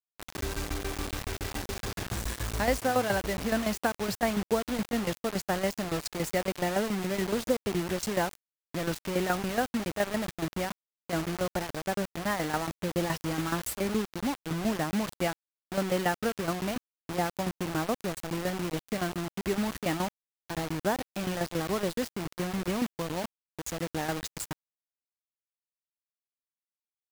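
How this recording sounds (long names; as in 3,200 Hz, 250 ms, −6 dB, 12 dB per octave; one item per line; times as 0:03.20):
tremolo saw down 7.1 Hz, depth 75%
a quantiser's noise floor 6 bits, dither none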